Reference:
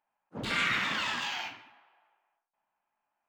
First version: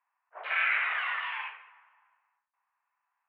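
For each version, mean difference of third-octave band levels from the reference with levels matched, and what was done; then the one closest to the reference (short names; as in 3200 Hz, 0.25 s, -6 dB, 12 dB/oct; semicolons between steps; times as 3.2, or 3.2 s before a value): 14.0 dB: tilt +2 dB/oct; mistuned SSB +150 Hz 460–2300 Hz; gain +2 dB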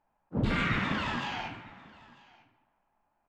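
7.5 dB: tilt -4 dB/oct; in parallel at -1 dB: compressor, threshold -45 dBFS, peak gain reduction 19 dB; on the sum: echo 0.945 s -23 dB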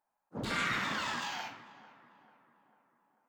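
4.0 dB: bell 2700 Hz -8 dB 1.1 oct; on a send: tape echo 0.444 s, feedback 61%, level -17 dB, low-pass 1700 Hz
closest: third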